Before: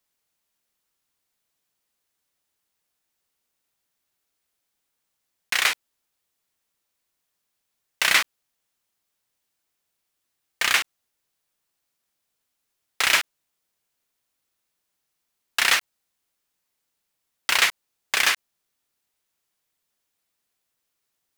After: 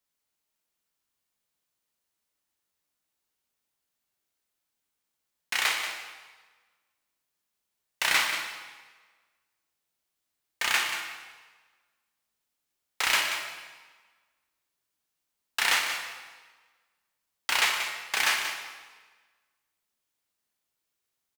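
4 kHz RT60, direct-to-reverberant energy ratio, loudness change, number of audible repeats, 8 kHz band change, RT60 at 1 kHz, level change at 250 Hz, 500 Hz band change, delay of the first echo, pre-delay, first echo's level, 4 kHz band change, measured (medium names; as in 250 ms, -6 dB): 1.2 s, 1.5 dB, -5.5 dB, 1, -4.5 dB, 1.4 s, -3.5 dB, -3.5 dB, 183 ms, 12 ms, -10.0 dB, -4.0 dB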